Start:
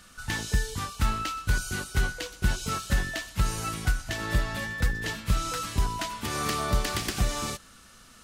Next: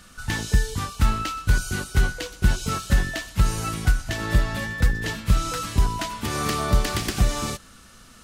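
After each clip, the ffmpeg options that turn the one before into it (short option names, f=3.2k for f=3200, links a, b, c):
-af "lowshelf=f=460:g=4,volume=2.5dB"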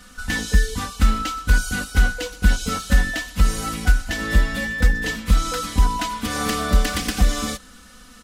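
-af "aecho=1:1:4:0.91"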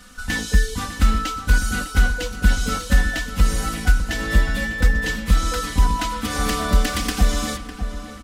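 -filter_complex "[0:a]asplit=2[a][b];[b]adelay=603,lowpass=f=2.2k:p=1,volume=-10dB,asplit=2[c][d];[d]adelay=603,lowpass=f=2.2k:p=1,volume=0.45,asplit=2[e][f];[f]adelay=603,lowpass=f=2.2k:p=1,volume=0.45,asplit=2[g][h];[h]adelay=603,lowpass=f=2.2k:p=1,volume=0.45,asplit=2[i][j];[j]adelay=603,lowpass=f=2.2k:p=1,volume=0.45[k];[a][c][e][g][i][k]amix=inputs=6:normalize=0"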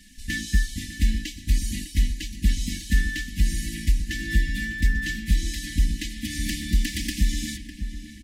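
-af "afftfilt=real='re*(1-between(b*sr/4096,360,1600))':imag='im*(1-between(b*sr/4096,360,1600))':win_size=4096:overlap=0.75,volume=-4.5dB"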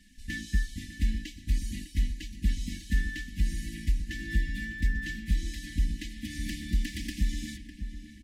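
-af "highshelf=f=3.4k:g=-6.5,volume=-6dB"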